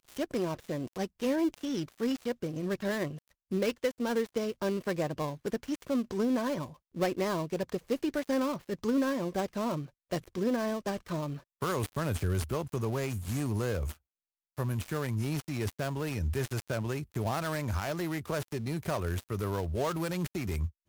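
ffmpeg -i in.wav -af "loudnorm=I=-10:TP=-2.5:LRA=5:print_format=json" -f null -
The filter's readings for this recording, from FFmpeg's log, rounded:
"input_i" : "-33.3",
"input_tp" : "-17.0",
"input_lra" : "2.0",
"input_thresh" : "-43.3",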